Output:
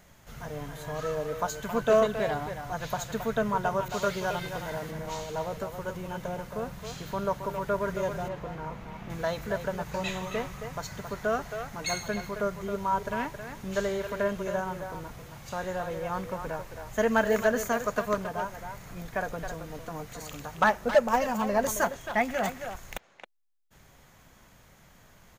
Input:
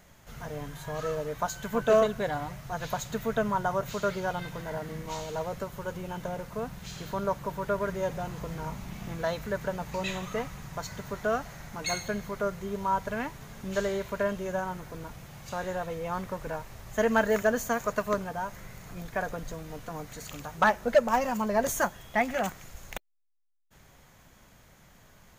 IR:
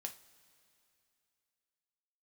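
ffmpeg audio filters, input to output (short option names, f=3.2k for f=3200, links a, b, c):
-filter_complex "[0:a]asettb=1/sr,asplit=3[a][b][c];[a]atrim=end=8.284[d];[b]atrim=start=8.28:end=9.1,asetpts=PTS-STARTPTS,afade=t=in:d=0.004:c=qsin,afade=t=out:st=0.816:d=0.004:c=qsin,bass=f=250:g=-4,treble=f=4k:g=-13[e];[c]atrim=start=9.096[f];[d][e]acrossfade=d=0.004:c1=hsin:c2=qsin[g];[g][f]acrossfade=d=0.004:c1=qsin:c2=hsin,asplit=2[h][i];[i]adelay=270,highpass=300,lowpass=3.4k,asoftclip=type=hard:threshold=-23dB,volume=-7dB[j];[h][j]amix=inputs=2:normalize=0,asettb=1/sr,asplit=3[k][l][m];[k]atrim=end=3.884[n];[l]atrim=start=3.88:end=4.91,asetpts=PTS-STARTPTS,afade=t=in:d=0.004:c=qsin,afade=t=out:st=1.026:d=0.004:c=qsin,adynamicequalizer=threshold=0.00794:dfrequency=2100:dqfactor=0.7:tfrequency=2100:tqfactor=0.7:attack=5:release=100:ratio=0.375:range=2.5:mode=boostabove:tftype=highshelf[o];[m]atrim=start=4.906[p];[n][o]acrossfade=d=0.004:c1=hsin:c2=qsin[q];[q][p]acrossfade=d=0.004:c1=qsin:c2=hsin"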